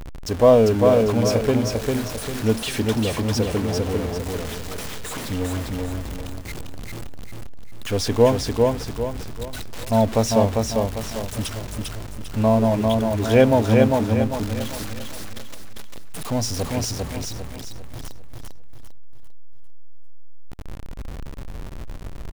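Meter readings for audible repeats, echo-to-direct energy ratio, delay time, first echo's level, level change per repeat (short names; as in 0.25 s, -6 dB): 4, -2.5 dB, 0.398 s, -3.0 dB, -8.0 dB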